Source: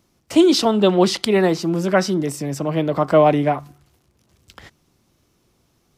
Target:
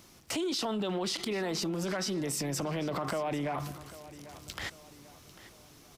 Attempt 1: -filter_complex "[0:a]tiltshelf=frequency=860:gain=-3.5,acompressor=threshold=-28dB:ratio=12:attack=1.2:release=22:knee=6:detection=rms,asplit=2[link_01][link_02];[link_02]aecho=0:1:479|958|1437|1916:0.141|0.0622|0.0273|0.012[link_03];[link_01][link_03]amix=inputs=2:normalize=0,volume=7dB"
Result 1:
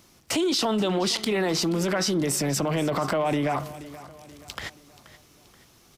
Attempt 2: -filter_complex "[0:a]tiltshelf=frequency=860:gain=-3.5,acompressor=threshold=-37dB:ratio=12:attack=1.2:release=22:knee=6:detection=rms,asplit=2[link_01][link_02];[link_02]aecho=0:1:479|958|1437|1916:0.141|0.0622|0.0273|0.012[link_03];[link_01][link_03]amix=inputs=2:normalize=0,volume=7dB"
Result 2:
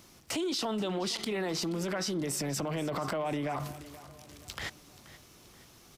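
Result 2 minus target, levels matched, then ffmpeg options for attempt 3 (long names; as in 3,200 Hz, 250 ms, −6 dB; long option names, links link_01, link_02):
echo 316 ms early
-filter_complex "[0:a]tiltshelf=frequency=860:gain=-3.5,acompressor=threshold=-37dB:ratio=12:attack=1.2:release=22:knee=6:detection=rms,asplit=2[link_01][link_02];[link_02]aecho=0:1:795|1590|2385|3180:0.141|0.0622|0.0273|0.012[link_03];[link_01][link_03]amix=inputs=2:normalize=0,volume=7dB"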